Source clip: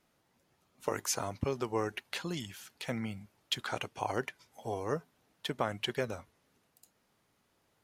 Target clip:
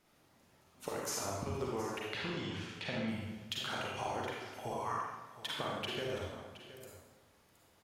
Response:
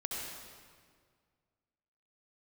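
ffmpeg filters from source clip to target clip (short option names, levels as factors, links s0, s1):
-filter_complex "[0:a]asettb=1/sr,asplit=3[s0][s1][s2];[s0]atrim=end=2.094[s3];[s1]atrim=start=2.09:end=3.08,asetpts=PTS-STARTPTS,afade=t=in:d=0.004:c=qsin,afade=t=out:st=0.986:d=0.004:c=qsin,lowpass=3700[s4];[s2]atrim=start=3.076[s5];[s3][s4]acrossfade=d=0.004:c1=hsin:c2=qsin[s6];[s6][s5]acrossfade=d=0.004:c1=qsin:c2=hsin,asettb=1/sr,asplit=3[s7][s8][s9];[s7]atrim=end=4.714[s10];[s8]atrim=start=4.71:end=5.56,asetpts=PTS-STARTPTS,afade=t=in:d=0.004:c=qsin,afade=t=out:st=0.846:d=0.004:c=qsin,lowshelf=f=680:t=q:w=3:g=-14[s11];[s9]atrim=start=5.556[s12];[s10][s11]acrossfade=d=0.004:c1=hsin:c2=qsin[s13];[s13][s12]acrossfade=d=0.004:c1=qsin:c2=hsin,acompressor=threshold=0.01:ratio=6,aecho=1:1:720:0.188[s14];[1:a]atrim=start_sample=2205,asetrate=74970,aresample=44100[s15];[s14][s15]afir=irnorm=-1:irlink=0,volume=2.66"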